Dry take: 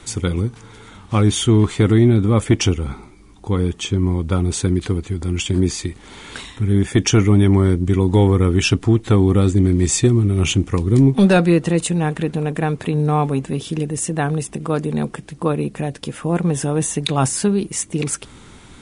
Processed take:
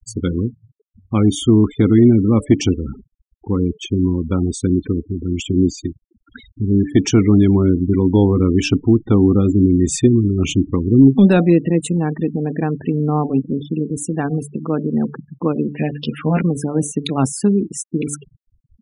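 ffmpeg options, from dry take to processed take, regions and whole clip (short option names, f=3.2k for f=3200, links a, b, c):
-filter_complex "[0:a]asettb=1/sr,asplit=3[a][b][c];[a]atrim=end=15.734[d];[b]atrim=start=15.73:end=16.42,asetpts=PTS-STARTPTS,afade=t=in:d=0.004:c=qsin,afade=t=out:st=0.686:d=0.004:c=qsin,equalizer=f=2.6k:t=o:w=2:g=8,bandreject=f=330:w=6.9,asplit=2[e][f];[f]adelay=13,volume=-2dB[g];[e][g]amix=inputs=2:normalize=0,atrim=end_sample=30429[h];[c]atrim=start=16.416[i];[d][h]acrossfade=d=0.004:c1=hsin:c2=qsin[j];[j][i]acrossfade=d=0.004:c1=qsin:c2=hsin,bandreject=f=145.8:t=h:w=4,bandreject=f=291.6:t=h:w=4,bandreject=f=437.4:t=h:w=4,bandreject=f=583.2:t=h:w=4,bandreject=f=729:t=h:w=4,afftfilt=real='re*gte(hypot(re,im),0.0708)':imag='im*gte(hypot(re,im),0.0708)':win_size=1024:overlap=0.75,equalizer=f=260:t=o:w=1.1:g=9.5,volume=-3.5dB"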